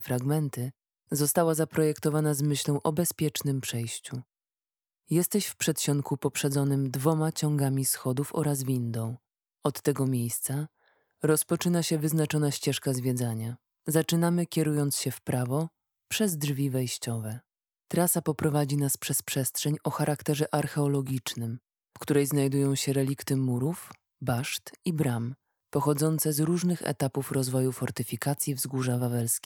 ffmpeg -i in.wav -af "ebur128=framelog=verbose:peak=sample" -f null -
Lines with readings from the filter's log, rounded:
Integrated loudness:
  I:         -28.3 LUFS
  Threshold: -38.6 LUFS
Loudness range:
  LRA:         2.4 LU
  Threshold: -48.7 LUFS
  LRA low:   -30.0 LUFS
  LRA high:  -27.6 LUFS
Sample peak:
  Peak:       -8.4 dBFS